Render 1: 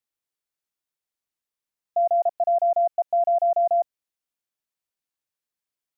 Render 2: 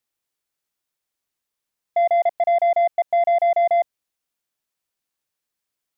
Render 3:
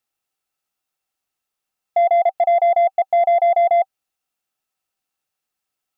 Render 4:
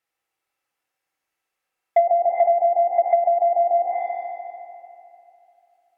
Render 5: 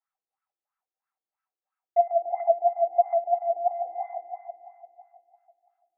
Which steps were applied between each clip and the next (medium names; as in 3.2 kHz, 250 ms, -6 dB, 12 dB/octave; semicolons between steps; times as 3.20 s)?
saturation -19.5 dBFS, distortion -18 dB; trim +6 dB
small resonant body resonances 770/1300/2700 Hz, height 10 dB, ringing for 40 ms
graphic EQ 500/1000/2000 Hz +7/+3/+10 dB; reverberation RT60 2.8 s, pre-delay 3 ms, DRR -2 dB; low-pass that closes with the level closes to 500 Hz, closed at -4 dBFS; trim -6 dB
resonant low shelf 530 Hz -7 dB, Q 1.5; wah-wah 3 Hz 340–1400 Hz, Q 4.6; band-stop 550 Hz, Q 13